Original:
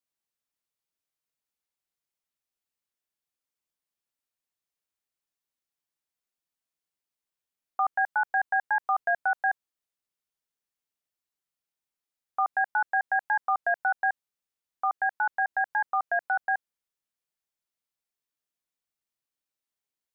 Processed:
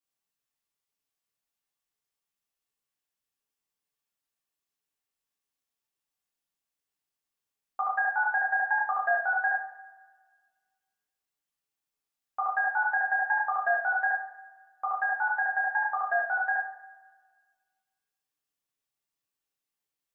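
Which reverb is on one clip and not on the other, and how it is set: two-slope reverb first 0.5 s, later 1.6 s, from -17 dB, DRR -5.5 dB; gain -5 dB

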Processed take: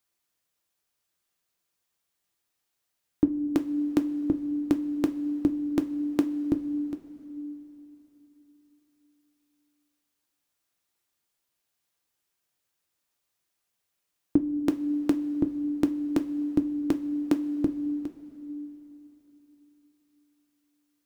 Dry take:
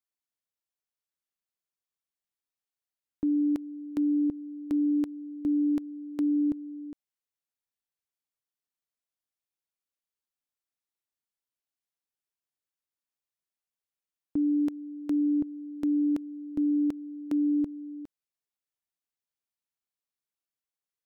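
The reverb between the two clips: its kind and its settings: two-slope reverb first 0.22 s, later 3.7 s, from -19 dB, DRR 6.5 dB; gain +11.5 dB

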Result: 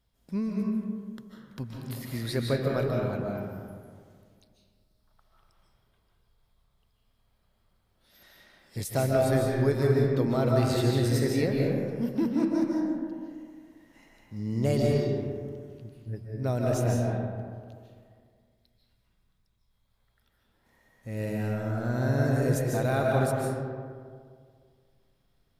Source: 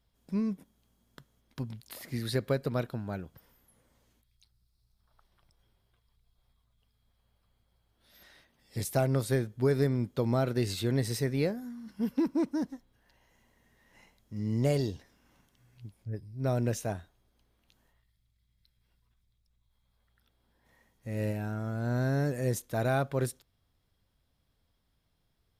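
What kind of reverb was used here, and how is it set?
digital reverb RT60 2 s, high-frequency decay 0.4×, pre-delay 0.11 s, DRR -2 dB

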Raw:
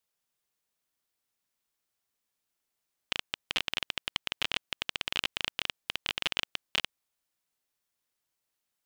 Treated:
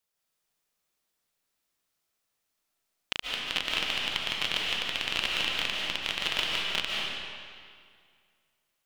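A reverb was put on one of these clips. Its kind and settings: digital reverb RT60 2.1 s, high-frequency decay 0.85×, pre-delay 0.105 s, DRR -3 dB

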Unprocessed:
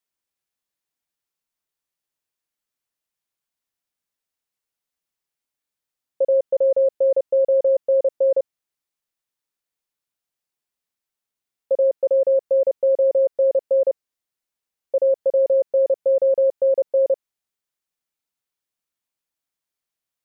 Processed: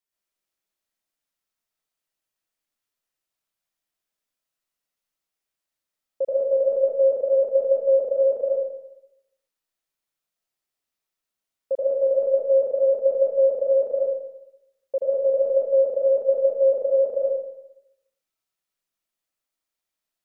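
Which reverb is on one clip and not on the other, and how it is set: digital reverb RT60 0.88 s, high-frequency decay 0.85×, pre-delay 70 ms, DRR -5 dB; gain -5 dB

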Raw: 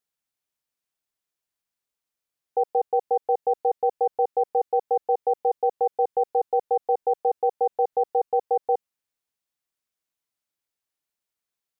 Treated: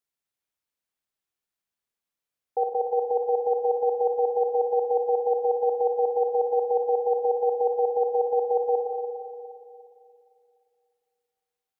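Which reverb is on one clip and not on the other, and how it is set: spring tank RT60 2.6 s, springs 50/58 ms, chirp 25 ms, DRR 1.5 dB; gain -3 dB

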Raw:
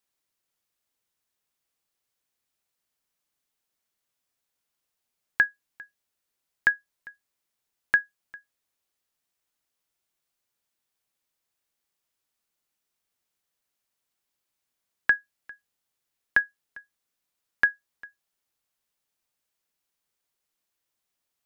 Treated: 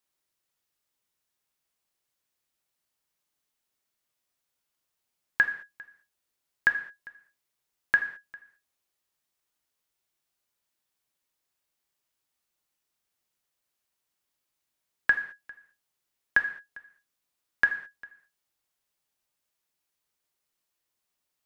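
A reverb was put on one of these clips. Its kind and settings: non-linear reverb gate 0.24 s falling, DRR 6 dB; gain -1 dB

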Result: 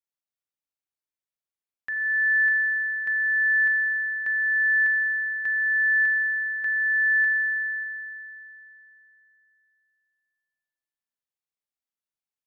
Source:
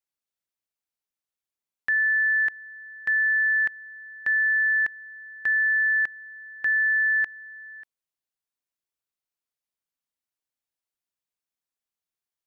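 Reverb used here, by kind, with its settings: spring tank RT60 3 s, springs 39 ms, chirp 60 ms, DRR 2.5 dB; gain -7 dB

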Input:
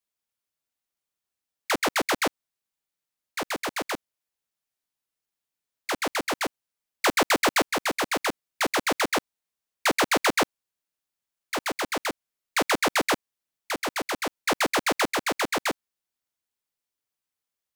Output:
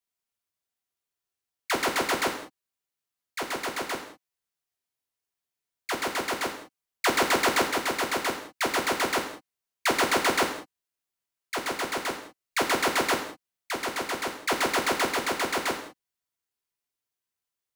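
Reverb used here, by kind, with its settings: non-linear reverb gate 0.23 s falling, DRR 2 dB; gain -3 dB

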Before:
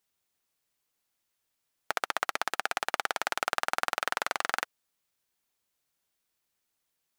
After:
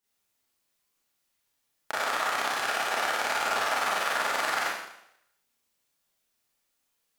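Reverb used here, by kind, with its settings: Schroeder reverb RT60 0.77 s, combs from 27 ms, DRR -9 dB; gain -5.5 dB

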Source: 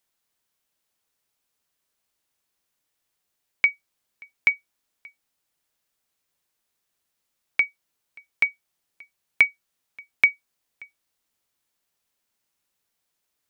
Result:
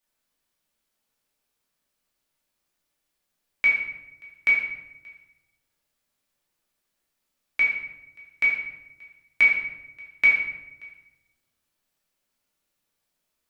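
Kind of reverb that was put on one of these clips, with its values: shoebox room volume 340 m³, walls mixed, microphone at 2.5 m; gain -6.5 dB

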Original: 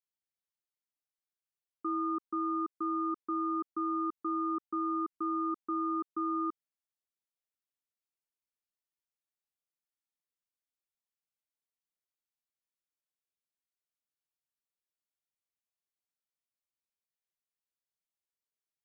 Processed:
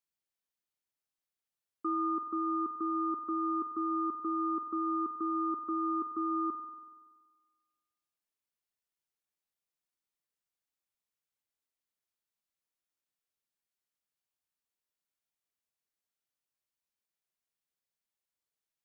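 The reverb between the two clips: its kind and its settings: spring tank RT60 1.5 s, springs 47 ms, chirp 25 ms, DRR 11.5 dB; gain +1 dB

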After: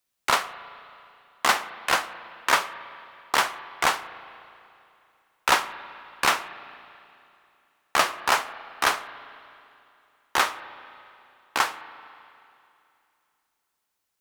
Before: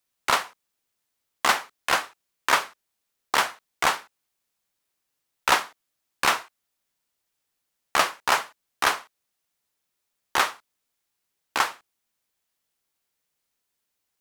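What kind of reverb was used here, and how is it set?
spring tank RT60 2.7 s, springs 35/54 ms, chirp 60 ms, DRR 13.5 dB

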